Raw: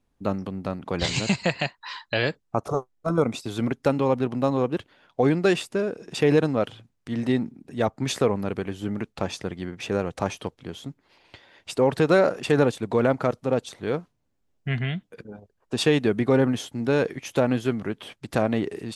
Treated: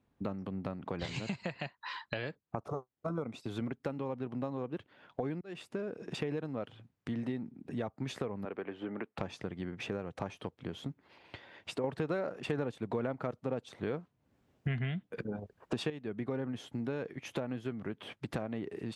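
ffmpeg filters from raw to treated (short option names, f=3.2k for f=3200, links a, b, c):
-filter_complex "[0:a]asettb=1/sr,asplit=3[a][b][c];[a]atrim=end=8.454[d];[b]atrim=start=8.45:end=9.18,asetpts=PTS-STARTPTS,afade=t=in:d=0.004:c=qsin,afade=t=out:st=0.726:d=0.004:c=qsin,acrossover=split=280 3300:gain=0.112 1 0.0631[e][f][g];[e][f][g]amix=inputs=3:normalize=0[h];[c]atrim=start=9.176[i];[d][h]acrossfade=d=0.004:c1=hsin:c2=qsin[j];[j][i]acrossfade=d=0.004:c1=qsin:c2=hsin,asplit=4[k][l][m][n];[k]atrim=end=5.41,asetpts=PTS-STARTPTS,afade=t=out:st=5.406:d=0.004:c=hsin[o];[l]atrim=start=5.41:end=11.842,asetpts=PTS-STARTPTS,afade=t=in:d=0.63[p];[m]atrim=start=11.838:end=15.902,asetpts=PTS-STARTPTS,volume=10.5dB[q];[n]atrim=start=15.898[r];[o][p]concat=n=2:v=0:a=1[s];[s][q]acrossfade=d=0.004:c1=hsin:c2=hsin[t];[t][r]acrossfade=d=0.004:c1=hsin:c2=hsin,highpass=77,acompressor=threshold=-36dB:ratio=5,bass=f=250:g=2,treble=f=4k:g=-10"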